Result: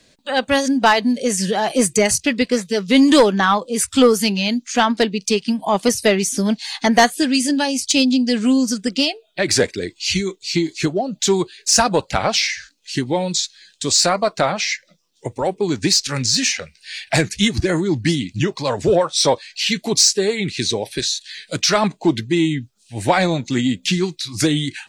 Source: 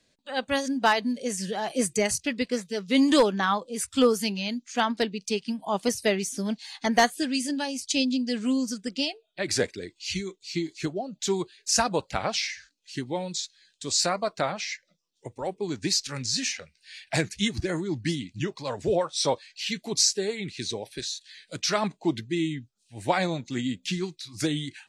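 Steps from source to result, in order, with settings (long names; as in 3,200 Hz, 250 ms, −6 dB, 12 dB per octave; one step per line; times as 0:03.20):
in parallel at −1 dB: downward compressor, threshold −33 dBFS, peak gain reduction 16.5 dB
on the sum: soft clipping −11 dBFS, distortion −22 dB
level +8 dB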